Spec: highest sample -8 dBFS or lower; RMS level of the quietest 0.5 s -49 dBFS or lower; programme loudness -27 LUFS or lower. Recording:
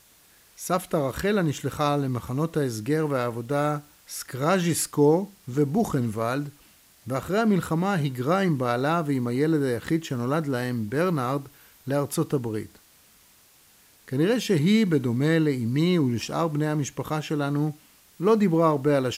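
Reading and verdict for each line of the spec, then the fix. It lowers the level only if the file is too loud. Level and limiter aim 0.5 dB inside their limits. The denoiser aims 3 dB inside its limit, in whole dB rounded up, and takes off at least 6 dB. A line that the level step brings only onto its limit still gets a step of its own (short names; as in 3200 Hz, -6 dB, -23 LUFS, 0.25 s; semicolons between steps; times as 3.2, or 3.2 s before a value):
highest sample -9.5 dBFS: OK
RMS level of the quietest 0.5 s -57 dBFS: OK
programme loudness -25.0 LUFS: fail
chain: gain -2.5 dB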